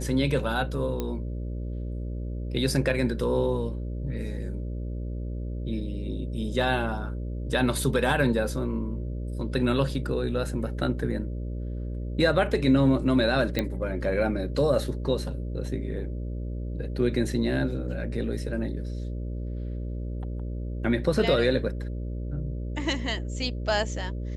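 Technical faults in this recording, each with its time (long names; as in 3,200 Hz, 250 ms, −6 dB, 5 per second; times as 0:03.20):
mains buzz 60 Hz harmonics 10 −32 dBFS
0:01.00: click −16 dBFS
0:13.59: click −12 dBFS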